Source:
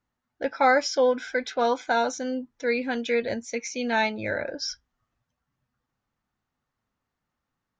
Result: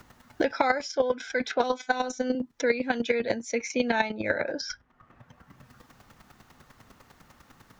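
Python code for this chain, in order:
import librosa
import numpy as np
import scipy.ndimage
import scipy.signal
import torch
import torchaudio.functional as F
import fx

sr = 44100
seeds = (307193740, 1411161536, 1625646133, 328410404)

y = fx.chopper(x, sr, hz=10.0, depth_pct=65, duty_pct=15)
y = fx.robotise(y, sr, hz=253.0, at=(1.63, 2.35))
y = fx.band_squash(y, sr, depth_pct=100)
y = y * librosa.db_to_amplitude(3.5)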